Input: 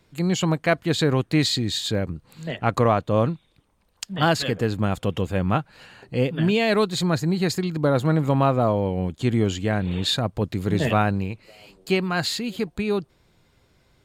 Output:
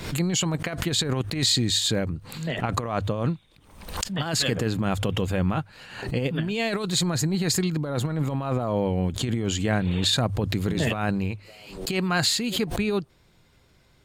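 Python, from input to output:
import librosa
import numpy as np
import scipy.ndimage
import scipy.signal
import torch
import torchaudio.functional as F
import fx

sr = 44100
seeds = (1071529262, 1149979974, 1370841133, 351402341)

y = fx.dynamic_eq(x, sr, hz=7900.0, q=1.2, threshold_db=-43.0, ratio=4.0, max_db=5)
y = fx.over_compress(y, sr, threshold_db=-22.0, ratio=-0.5)
y = fx.peak_eq(y, sr, hz=470.0, db=-2.5, octaves=2.7)
y = fx.hum_notches(y, sr, base_hz=50, count=2)
y = fx.pre_swell(y, sr, db_per_s=77.0)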